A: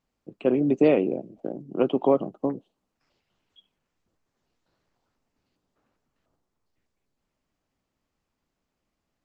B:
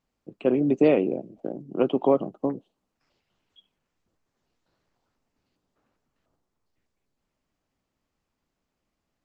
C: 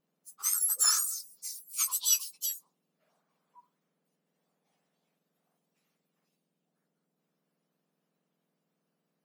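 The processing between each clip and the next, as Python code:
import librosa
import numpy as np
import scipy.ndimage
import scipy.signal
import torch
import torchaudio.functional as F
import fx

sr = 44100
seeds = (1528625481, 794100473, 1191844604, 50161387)

y1 = x
y2 = fx.octave_mirror(y1, sr, pivot_hz=1800.0)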